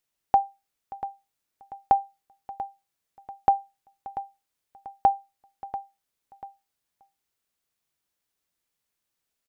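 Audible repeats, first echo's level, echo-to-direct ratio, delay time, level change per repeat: 2, −13.5 dB, −13.0 dB, 689 ms, −8.0 dB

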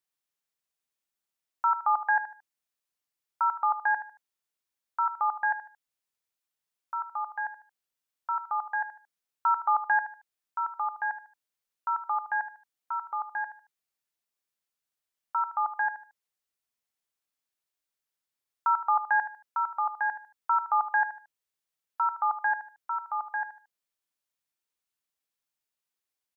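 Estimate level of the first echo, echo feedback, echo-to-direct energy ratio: −12.0 dB, 30%, −11.5 dB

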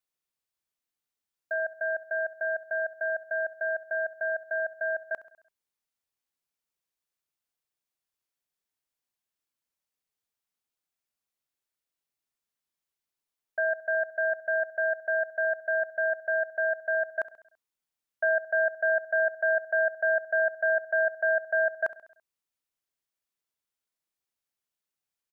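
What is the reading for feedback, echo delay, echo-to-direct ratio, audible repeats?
55%, 67 ms, −15.5 dB, 4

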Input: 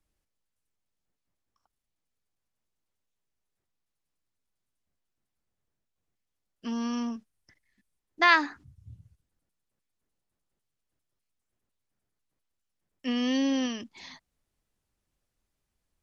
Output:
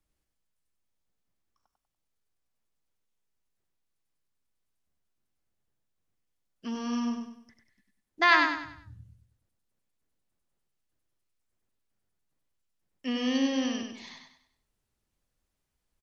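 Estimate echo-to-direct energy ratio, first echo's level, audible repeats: −4.0 dB, −4.5 dB, 4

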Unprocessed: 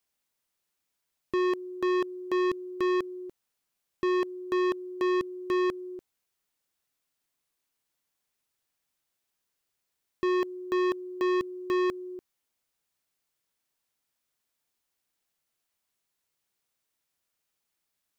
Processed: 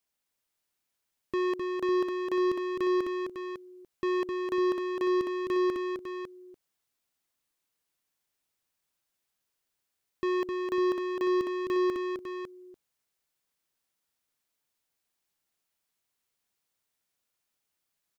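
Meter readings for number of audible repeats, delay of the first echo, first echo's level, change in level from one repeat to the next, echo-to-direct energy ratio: 2, 259 ms, −4.5 dB, repeats not evenly spaced, −3.0 dB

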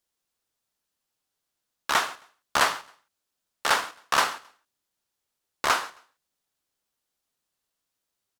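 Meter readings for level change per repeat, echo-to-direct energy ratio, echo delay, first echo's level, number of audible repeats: −11.5 dB, −22.0 dB, 134 ms, −22.5 dB, 2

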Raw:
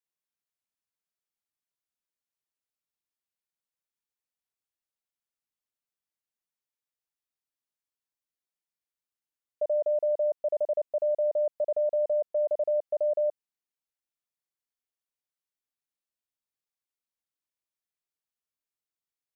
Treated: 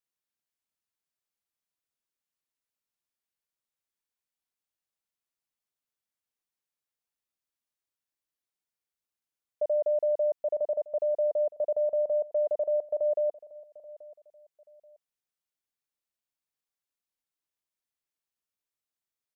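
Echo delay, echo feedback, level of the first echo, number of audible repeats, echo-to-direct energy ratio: 832 ms, 27%, −19.0 dB, 2, −18.5 dB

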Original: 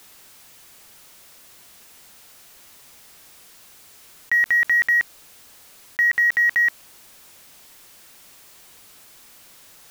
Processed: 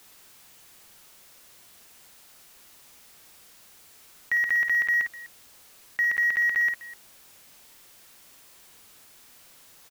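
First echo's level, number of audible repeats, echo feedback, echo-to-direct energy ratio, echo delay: −7.0 dB, 2, repeats not evenly spaced, −6.5 dB, 53 ms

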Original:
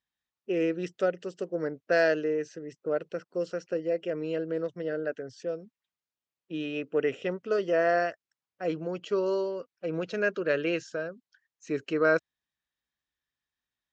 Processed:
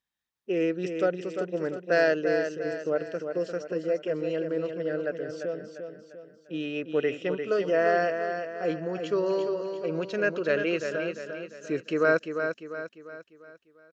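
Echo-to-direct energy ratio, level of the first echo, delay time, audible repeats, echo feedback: −6.0 dB, −7.0 dB, 348 ms, 5, 45%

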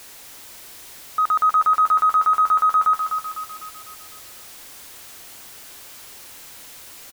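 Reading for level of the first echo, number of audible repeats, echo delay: −7.0 dB, 5, 251 ms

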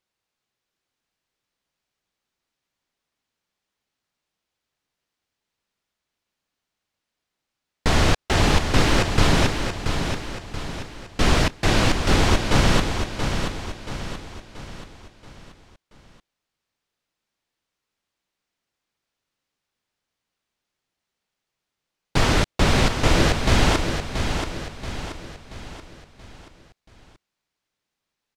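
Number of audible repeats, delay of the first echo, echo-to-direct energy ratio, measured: 5, 680 ms, −6.0 dB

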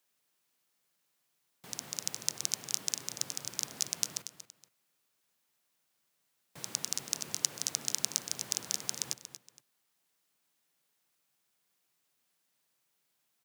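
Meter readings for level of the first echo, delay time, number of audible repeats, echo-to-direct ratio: −12.0 dB, 234 ms, 2, −11.5 dB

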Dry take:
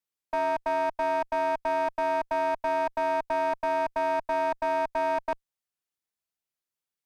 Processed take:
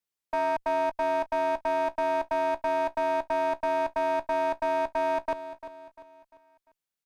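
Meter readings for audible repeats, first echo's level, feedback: 3, −13.0 dB, 42%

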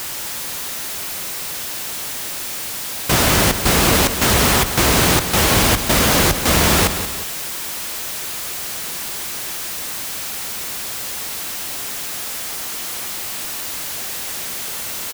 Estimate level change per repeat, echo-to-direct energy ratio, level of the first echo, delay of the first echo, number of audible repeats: −7.0 dB, −9.0 dB, −10.0 dB, 180 ms, 2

